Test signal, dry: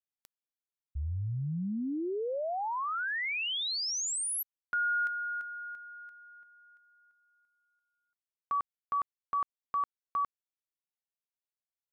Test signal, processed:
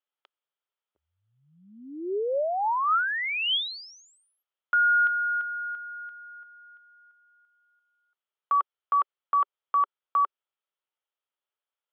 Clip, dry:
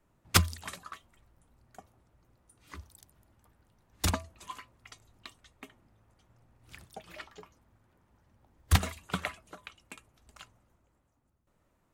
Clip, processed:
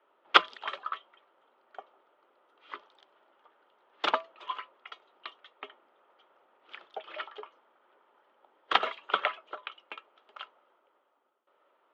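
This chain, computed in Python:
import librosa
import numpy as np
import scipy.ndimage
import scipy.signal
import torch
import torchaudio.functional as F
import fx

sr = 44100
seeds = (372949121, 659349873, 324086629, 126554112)

y = fx.cabinet(x, sr, low_hz=380.0, low_slope=24, high_hz=3400.0, hz=(400.0, 570.0, 890.0, 1300.0, 3200.0), db=(5, 5, 5, 9, 9))
y = y * 10.0 ** (2.5 / 20.0)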